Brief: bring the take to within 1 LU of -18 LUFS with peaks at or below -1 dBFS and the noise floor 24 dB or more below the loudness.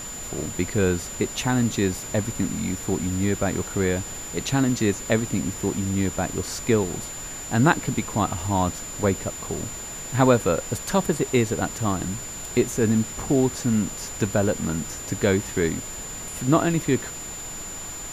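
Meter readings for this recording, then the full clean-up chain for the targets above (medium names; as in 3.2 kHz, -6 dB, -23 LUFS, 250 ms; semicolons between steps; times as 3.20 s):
steady tone 7.1 kHz; tone level -34 dBFS; noise floor -35 dBFS; noise floor target -49 dBFS; loudness -24.5 LUFS; peak level -4.5 dBFS; loudness target -18.0 LUFS
-> band-stop 7.1 kHz, Q 30; noise print and reduce 14 dB; trim +6.5 dB; peak limiter -1 dBFS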